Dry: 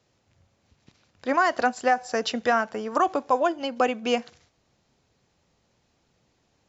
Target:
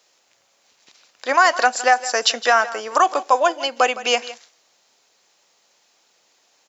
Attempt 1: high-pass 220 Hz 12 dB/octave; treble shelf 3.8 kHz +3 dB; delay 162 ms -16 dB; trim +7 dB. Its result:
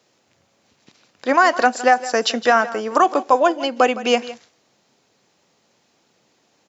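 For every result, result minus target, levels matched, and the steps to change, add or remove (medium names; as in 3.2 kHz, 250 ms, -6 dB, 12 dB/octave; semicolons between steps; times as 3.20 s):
250 Hz band +10.5 dB; 8 kHz band -5.5 dB
change: high-pass 570 Hz 12 dB/octave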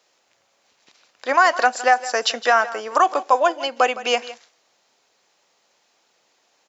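8 kHz band -4.5 dB
change: treble shelf 3.8 kHz +10 dB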